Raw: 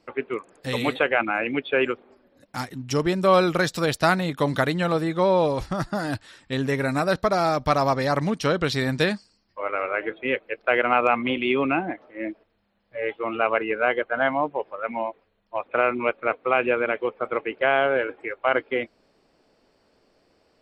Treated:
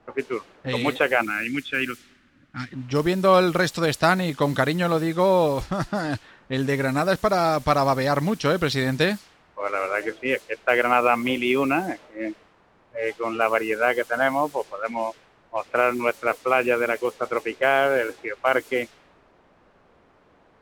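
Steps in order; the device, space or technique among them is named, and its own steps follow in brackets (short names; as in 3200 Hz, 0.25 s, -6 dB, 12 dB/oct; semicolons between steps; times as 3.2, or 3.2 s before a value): cassette deck with a dynamic noise filter (white noise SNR 23 dB; low-pass opened by the level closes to 920 Hz, open at -20 dBFS); 1.26–2.73 band shelf 640 Hz -15.5 dB; gain +1 dB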